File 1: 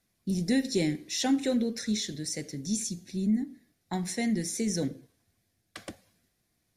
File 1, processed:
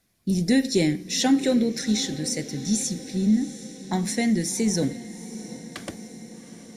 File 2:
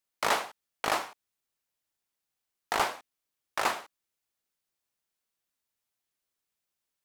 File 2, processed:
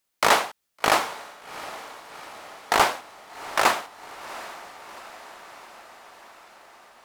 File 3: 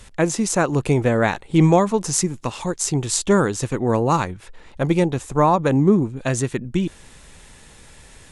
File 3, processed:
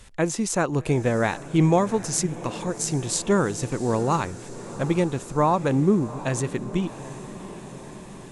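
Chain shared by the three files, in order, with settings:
diffused feedback echo 0.756 s, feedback 65%, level -15.5 dB; match loudness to -24 LUFS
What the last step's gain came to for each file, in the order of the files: +6.0, +8.5, -4.5 dB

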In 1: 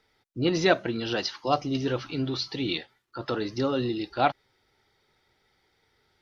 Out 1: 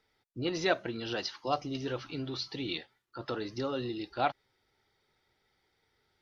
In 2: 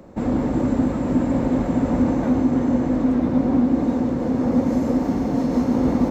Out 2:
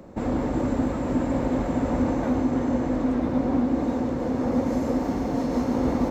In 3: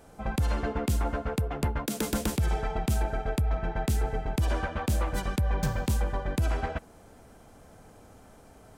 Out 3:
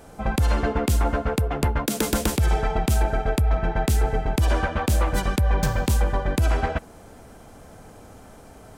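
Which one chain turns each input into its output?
dynamic EQ 190 Hz, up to -6 dB, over -32 dBFS, Q 0.94; normalise peaks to -12 dBFS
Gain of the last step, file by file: -6.0, -0.5, +7.0 dB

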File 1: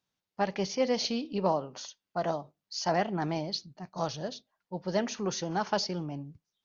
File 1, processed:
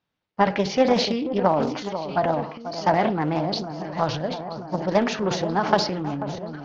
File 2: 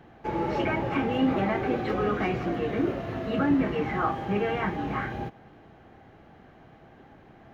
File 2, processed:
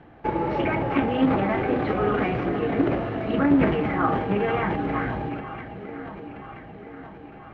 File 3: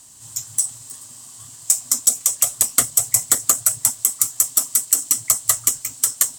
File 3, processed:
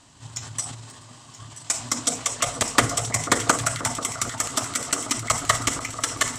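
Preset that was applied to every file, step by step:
LPF 3100 Hz 12 dB/oct; echo with dull and thin repeats by turns 0.489 s, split 1400 Hz, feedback 75%, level -10 dB; FDN reverb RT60 0.7 s, low-frequency decay 1×, high-frequency decay 0.35×, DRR 14 dB; transient shaper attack +6 dB, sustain +10 dB; Doppler distortion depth 0.22 ms; match loudness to -24 LUFS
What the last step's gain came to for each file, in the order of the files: +5.0, +1.0, +4.0 dB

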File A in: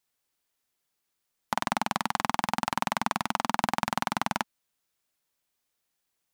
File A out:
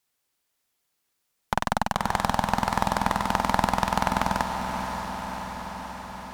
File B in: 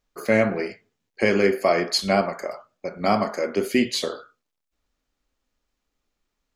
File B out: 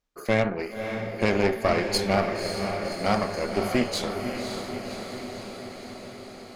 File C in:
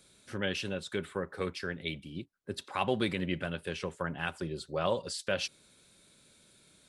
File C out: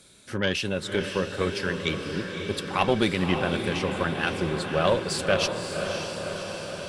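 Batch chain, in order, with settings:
added harmonics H 4 -13 dB, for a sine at -6 dBFS; diffused feedback echo 0.561 s, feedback 70%, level -6.5 dB; match loudness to -27 LUFS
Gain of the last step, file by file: +3.0, -5.0, +7.5 dB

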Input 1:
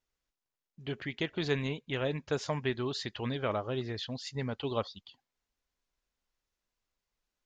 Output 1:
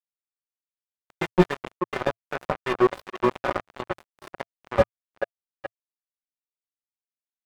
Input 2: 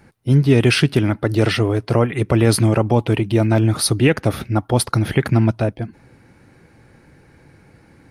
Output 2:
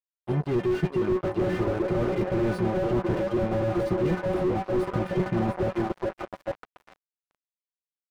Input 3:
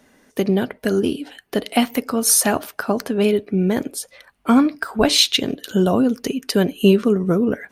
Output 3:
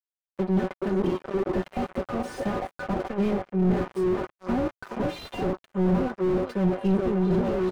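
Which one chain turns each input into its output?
metallic resonator 180 Hz, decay 0.24 s, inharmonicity 0.008; downsampling 22050 Hz; AGC gain up to 5 dB; on a send: delay with a stepping band-pass 0.424 s, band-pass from 410 Hz, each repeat 0.7 oct, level -2 dB; on the sum: crossover distortion -35.5 dBFS; tone controls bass +5 dB, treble -8 dB; reverse; compressor 5:1, threshold -28 dBFS; reverse; EQ curve 110 Hz 0 dB, 680 Hz +11 dB, 1200 Hz +10 dB, 4200 Hz 0 dB; slew limiter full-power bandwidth 19 Hz; match loudness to -27 LUFS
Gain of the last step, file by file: +18.0, +4.0, +4.0 dB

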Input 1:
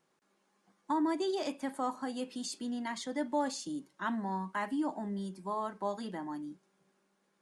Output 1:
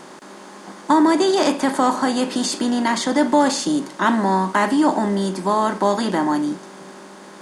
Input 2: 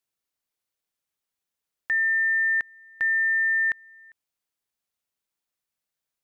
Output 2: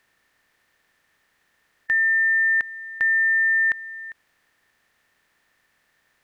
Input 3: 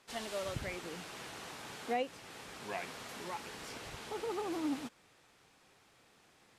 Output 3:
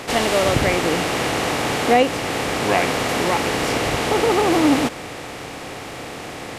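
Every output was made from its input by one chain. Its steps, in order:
per-bin compression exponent 0.6; match loudness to -19 LUFS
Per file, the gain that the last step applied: +14.0, +3.0, +18.0 dB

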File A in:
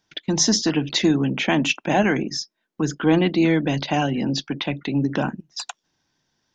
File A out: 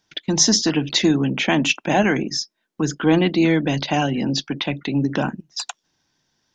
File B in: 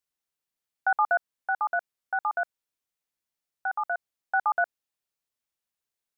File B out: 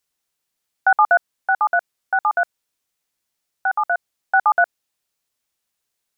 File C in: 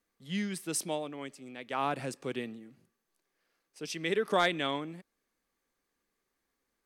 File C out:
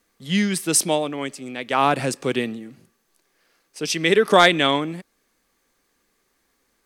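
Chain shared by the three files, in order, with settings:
bell 6900 Hz +2.5 dB 2.3 oct; match loudness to -20 LUFS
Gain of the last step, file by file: +1.0, +9.0, +13.0 dB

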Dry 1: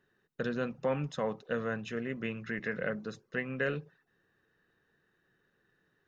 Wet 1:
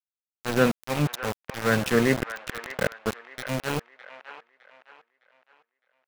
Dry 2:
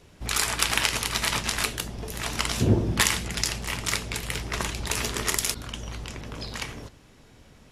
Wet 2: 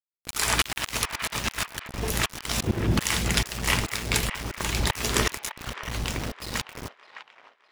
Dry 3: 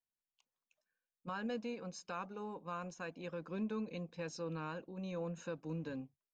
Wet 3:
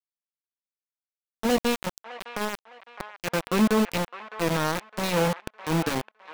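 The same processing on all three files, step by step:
auto swell 0.281 s; sample gate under -39 dBFS; band-limited delay 0.61 s, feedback 36%, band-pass 1400 Hz, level -10 dB; match loudness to -27 LUFS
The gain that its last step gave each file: +16.0, +7.5, +18.5 dB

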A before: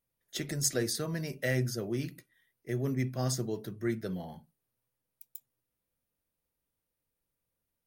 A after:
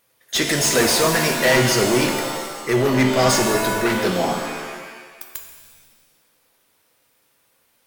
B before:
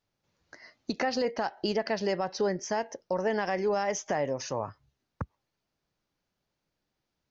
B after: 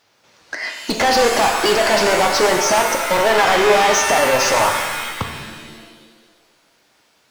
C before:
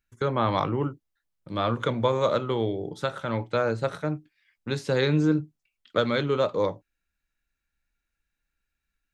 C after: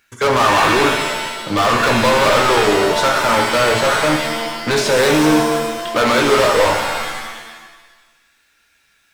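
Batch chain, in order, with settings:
dynamic EQ 950 Hz, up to +6 dB, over -38 dBFS, Q 0.78; overdrive pedal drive 33 dB, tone 6200 Hz, clips at -8.5 dBFS; shimmer reverb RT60 1.3 s, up +7 st, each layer -2 dB, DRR 4 dB; gain -1 dB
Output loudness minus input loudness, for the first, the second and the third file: +15.5, +15.5, +12.0 LU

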